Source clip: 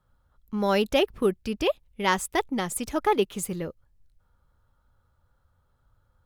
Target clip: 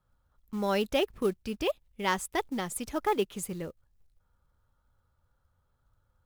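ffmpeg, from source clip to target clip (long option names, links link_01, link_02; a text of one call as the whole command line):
ffmpeg -i in.wav -af "acrusher=bits=6:mode=log:mix=0:aa=0.000001,volume=-5dB" out.wav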